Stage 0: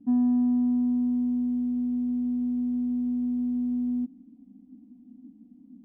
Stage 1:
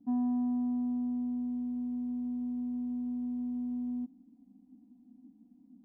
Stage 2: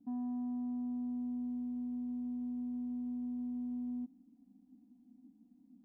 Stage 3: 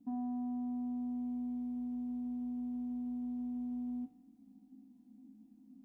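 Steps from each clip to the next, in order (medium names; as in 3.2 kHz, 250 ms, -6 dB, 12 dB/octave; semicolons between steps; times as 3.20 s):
peaking EQ 850 Hz +10.5 dB 0.73 oct; trim -8 dB
peak limiter -31 dBFS, peak gain reduction 4.5 dB; trim -4 dB
feedback comb 53 Hz, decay 0.56 s, harmonics all, mix 80%; trim +10.5 dB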